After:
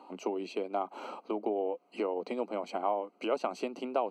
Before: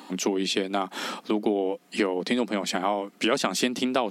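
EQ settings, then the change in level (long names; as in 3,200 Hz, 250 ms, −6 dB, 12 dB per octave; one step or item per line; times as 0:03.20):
moving average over 25 samples
high-pass filter 530 Hz 12 dB per octave
0.0 dB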